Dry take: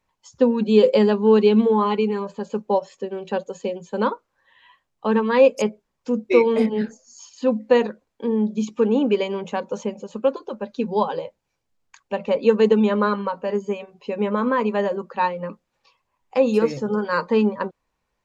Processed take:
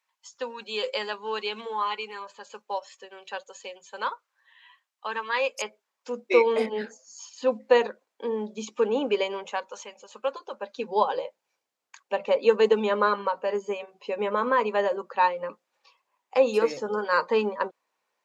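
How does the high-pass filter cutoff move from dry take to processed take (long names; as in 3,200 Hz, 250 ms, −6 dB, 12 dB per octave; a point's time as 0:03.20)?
0:05.49 1,200 Hz
0:06.40 490 Hz
0:09.26 490 Hz
0:09.82 1,300 Hz
0:11.00 460 Hz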